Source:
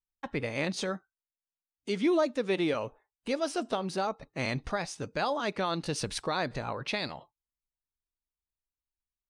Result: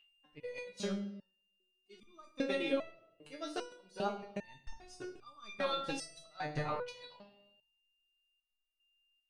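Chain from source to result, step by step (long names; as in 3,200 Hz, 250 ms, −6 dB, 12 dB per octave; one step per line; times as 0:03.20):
volume swells 492 ms
steady tone 2,800 Hz −54 dBFS
transient designer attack +9 dB, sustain −10 dB
on a send at −7 dB: convolution reverb RT60 0.90 s, pre-delay 3 ms
on the sum: step-sequenced resonator 2.5 Hz 150–1,200 Hz
level +8 dB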